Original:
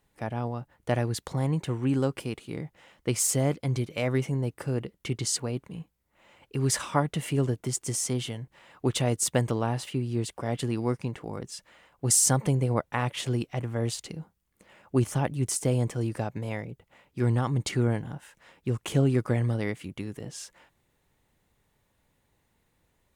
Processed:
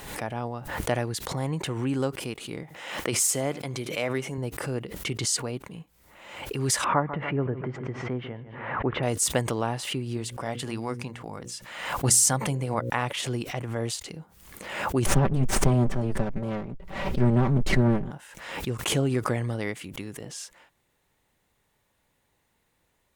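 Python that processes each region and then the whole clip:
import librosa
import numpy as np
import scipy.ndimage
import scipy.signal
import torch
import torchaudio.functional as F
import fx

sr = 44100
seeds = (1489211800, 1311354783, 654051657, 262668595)

y = fx.chain(x, sr, fx.highpass(hz=210.0, slope=6),
    fx.notch(hz=4600.0, q=28.0),
    fx.echo_single(ms=76, db=-24.0), at=(2.63, 4.38))
y = fx.chain(y, sr, fx.lowpass(hz=1900.0, slope=24),
    fx.echo_feedback(ms=145, feedback_pct=40, wet_db=-16.5), at=(6.84, 9.03))
y = fx.chain(y, sr, fx.peak_eq(hz=400.0, db=-4.5, octaves=0.84),
    fx.hum_notches(base_hz=60, count=9), at=(10.17, 12.9))
y = fx.chain(y, sr, fx.lower_of_two(delay_ms=5.2),
    fx.tilt_eq(slope=-3.5), at=(15.06, 18.11))
y = fx.low_shelf(y, sr, hz=330.0, db=-6.5)
y = fx.pre_swell(y, sr, db_per_s=56.0)
y = y * 10.0 ** (2.0 / 20.0)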